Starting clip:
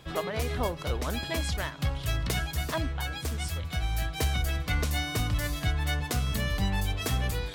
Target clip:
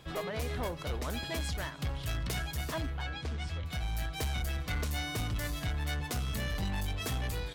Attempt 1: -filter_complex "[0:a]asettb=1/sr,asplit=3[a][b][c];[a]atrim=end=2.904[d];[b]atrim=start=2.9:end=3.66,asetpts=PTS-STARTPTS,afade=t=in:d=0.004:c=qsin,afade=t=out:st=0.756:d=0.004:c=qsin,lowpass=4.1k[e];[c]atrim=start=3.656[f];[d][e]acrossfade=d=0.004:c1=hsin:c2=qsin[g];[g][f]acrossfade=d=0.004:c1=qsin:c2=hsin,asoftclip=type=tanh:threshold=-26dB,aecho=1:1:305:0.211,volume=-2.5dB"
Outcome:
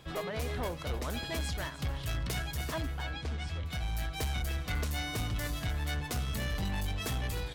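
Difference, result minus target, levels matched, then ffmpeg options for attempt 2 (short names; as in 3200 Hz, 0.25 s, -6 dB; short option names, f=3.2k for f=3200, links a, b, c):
echo-to-direct +11.5 dB
-filter_complex "[0:a]asettb=1/sr,asplit=3[a][b][c];[a]atrim=end=2.904[d];[b]atrim=start=2.9:end=3.66,asetpts=PTS-STARTPTS,afade=t=in:d=0.004:c=qsin,afade=t=out:st=0.756:d=0.004:c=qsin,lowpass=4.1k[e];[c]atrim=start=3.656[f];[d][e]acrossfade=d=0.004:c1=hsin:c2=qsin[g];[g][f]acrossfade=d=0.004:c1=qsin:c2=hsin,asoftclip=type=tanh:threshold=-26dB,aecho=1:1:305:0.0562,volume=-2.5dB"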